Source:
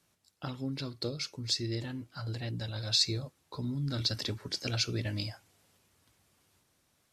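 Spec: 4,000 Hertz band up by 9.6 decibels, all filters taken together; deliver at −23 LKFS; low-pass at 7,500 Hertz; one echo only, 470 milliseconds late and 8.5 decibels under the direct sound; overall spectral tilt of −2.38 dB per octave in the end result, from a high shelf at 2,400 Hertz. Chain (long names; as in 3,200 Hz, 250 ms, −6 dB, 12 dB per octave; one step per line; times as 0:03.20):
low-pass filter 7,500 Hz
high-shelf EQ 2,400 Hz +9 dB
parametric band 4,000 Hz +3.5 dB
single-tap delay 470 ms −8.5 dB
level +2.5 dB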